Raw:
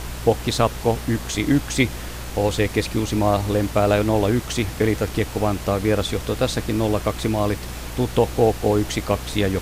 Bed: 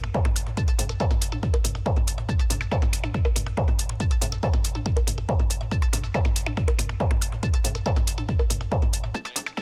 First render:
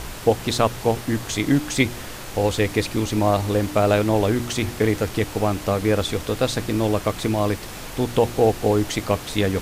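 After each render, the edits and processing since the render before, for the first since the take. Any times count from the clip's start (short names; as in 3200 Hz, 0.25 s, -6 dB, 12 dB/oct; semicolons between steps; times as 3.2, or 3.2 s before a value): de-hum 60 Hz, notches 6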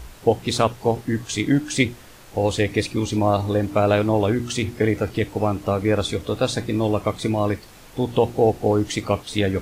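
noise print and reduce 11 dB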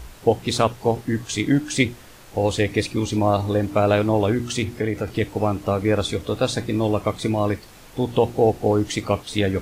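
4.64–5.08 compressor 1.5:1, threshold -25 dBFS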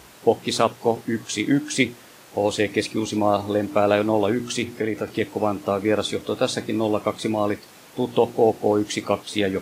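HPF 180 Hz 12 dB/oct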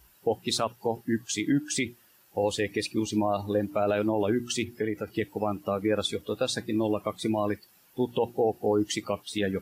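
per-bin expansion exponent 1.5; limiter -15.5 dBFS, peak gain reduction 10 dB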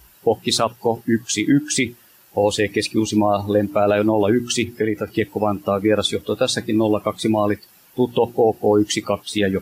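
gain +9 dB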